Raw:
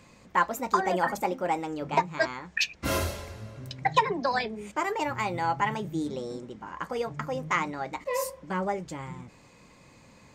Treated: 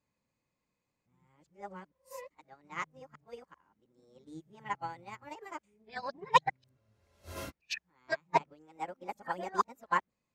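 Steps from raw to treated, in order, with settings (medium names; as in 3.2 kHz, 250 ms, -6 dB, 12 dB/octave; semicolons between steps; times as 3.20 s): reverse the whole clip; upward expansion 2.5:1, over -37 dBFS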